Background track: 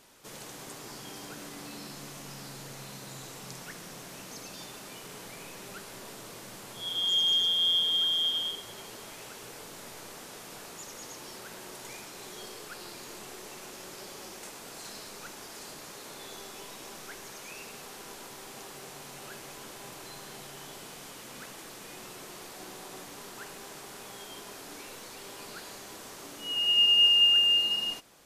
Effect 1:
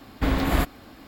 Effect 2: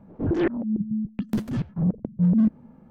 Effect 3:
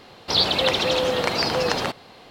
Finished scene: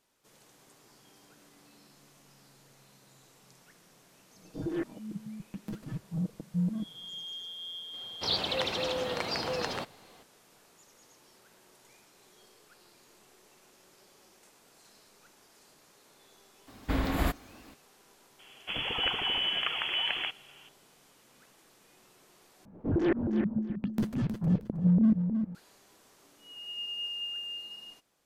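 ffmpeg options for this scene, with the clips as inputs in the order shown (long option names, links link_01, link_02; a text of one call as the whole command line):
ffmpeg -i bed.wav -i cue0.wav -i cue1.wav -i cue2.wav -filter_complex "[2:a]asplit=2[link_01][link_02];[3:a]asplit=2[link_03][link_04];[0:a]volume=-16dB[link_05];[link_01]aecho=1:1:6.3:0.83[link_06];[link_04]lowpass=frequency=3000:width_type=q:width=0.5098,lowpass=frequency=3000:width_type=q:width=0.6013,lowpass=frequency=3000:width_type=q:width=0.9,lowpass=frequency=3000:width_type=q:width=2.563,afreqshift=-3500[link_07];[link_02]aecho=1:1:314|628|942:0.422|0.101|0.0243[link_08];[link_05]asplit=2[link_09][link_10];[link_09]atrim=end=22.654[link_11];[link_08]atrim=end=2.9,asetpts=PTS-STARTPTS,volume=-4dB[link_12];[link_10]atrim=start=25.546[link_13];[link_06]atrim=end=2.9,asetpts=PTS-STARTPTS,volume=-14dB,afade=type=in:duration=0.004:curve=hsin,afade=type=out:start_time=2.896:duration=0.004:curve=hsin,adelay=4350[link_14];[link_03]atrim=end=2.3,asetpts=PTS-STARTPTS,volume=-10.5dB,afade=type=in:duration=0.004:curve=hsin,afade=type=out:start_time=2.296:duration=0.004:curve=hsin,adelay=7930[link_15];[1:a]atrim=end=1.07,asetpts=PTS-STARTPTS,volume=-6.5dB,afade=type=in:duration=0.004:curve=hsin,afade=type=out:start_time=1.066:duration=0.004:curve=hsin,adelay=16670[link_16];[link_07]atrim=end=2.3,asetpts=PTS-STARTPTS,volume=-8dB,afade=type=in:duration=0.004:curve=hsin,afade=type=out:start_time=2.296:duration=0.004:curve=hsin,adelay=18390[link_17];[link_11][link_12]acrossfade=duration=0.004:curve1=hsin:curve2=hsin[link_18];[link_18][link_13]acrossfade=duration=0.004:curve1=hsin:curve2=hsin[link_19];[link_19][link_14][link_15][link_16][link_17]amix=inputs=5:normalize=0" out.wav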